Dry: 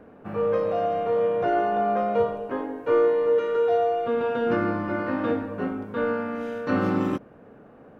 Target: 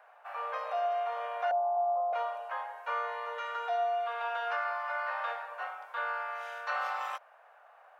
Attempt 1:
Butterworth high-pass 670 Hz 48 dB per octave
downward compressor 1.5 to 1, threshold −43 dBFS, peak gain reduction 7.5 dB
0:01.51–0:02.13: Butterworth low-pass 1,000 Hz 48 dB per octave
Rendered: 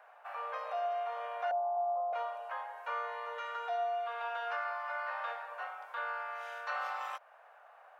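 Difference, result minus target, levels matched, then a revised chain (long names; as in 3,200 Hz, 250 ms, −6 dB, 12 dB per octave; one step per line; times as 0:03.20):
downward compressor: peak gain reduction +3.5 dB
Butterworth high-pass 670 Hz 48 dB per octave
downward compressor 1.5 to 1, threshold −32 dBFS, peak gain reduction 3.5 dB
0:01.51–0:02.13: Butterworth low-pass 1,000 Hz 48 dB per octave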